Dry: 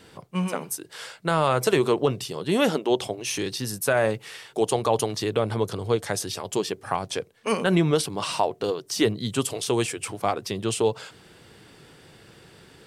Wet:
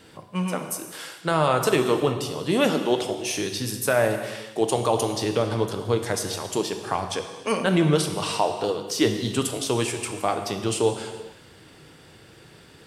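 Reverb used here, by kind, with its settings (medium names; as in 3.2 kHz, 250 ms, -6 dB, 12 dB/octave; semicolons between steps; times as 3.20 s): gated-style reverb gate 480 ms falling, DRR 5.5 dB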